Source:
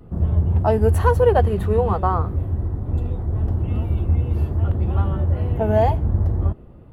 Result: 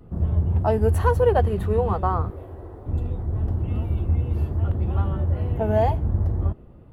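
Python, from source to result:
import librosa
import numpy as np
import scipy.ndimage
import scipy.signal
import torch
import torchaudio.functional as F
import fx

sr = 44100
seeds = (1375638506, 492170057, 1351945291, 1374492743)

y = fx.low_shelf_res(x, sr, hz=290.0, db=-12.5, q=1.5, at=(2.3, 2.86))
y = F.gain(torch.from_numpy(y), -3.0).numpy()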